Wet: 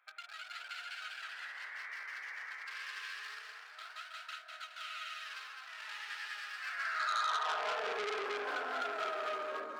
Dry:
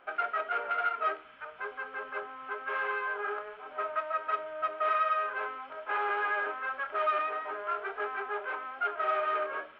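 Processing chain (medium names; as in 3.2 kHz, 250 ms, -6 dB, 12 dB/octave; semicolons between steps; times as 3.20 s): local Wiener filter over 15 samples; painted sound noise, 1.21–2.56 s, 280–2000 Hz -40 dBFS; compression, threshold -38 dBFS, peak gain reduction 12.5 dB; on a send: two-band feedback delay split 840 Hz, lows 89 ms, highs 209 ms, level -4.5 dB; on the sum: ever faster or slower copies 240 ms, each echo +1 st, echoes 3; high-pass sweep 2.9 kHz -> 220 Hz, 6.55–8.58 s; transformer saturation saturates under 3 kHz; trim +1 dB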